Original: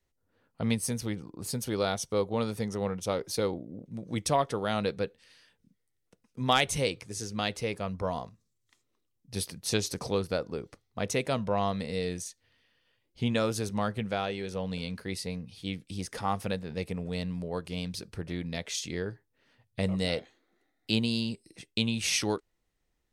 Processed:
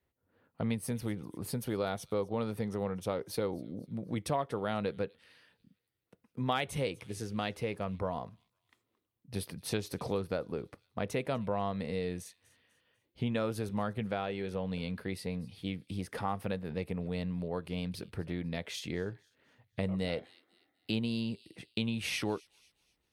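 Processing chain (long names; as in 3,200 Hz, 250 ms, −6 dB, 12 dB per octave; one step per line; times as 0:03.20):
high-pass filter 61 Hz
parametric band 6,500 Hz −13.5 dB 1.3 octaves
on a send: delay with a high-pass on its return 247 ms, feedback 36%, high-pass 3,500 Hz, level −20 dB
on the sum: downward compressor 2 to 1, threshold −35 dBFS, peak gain reduction 8.5 dB
level +1.5 dB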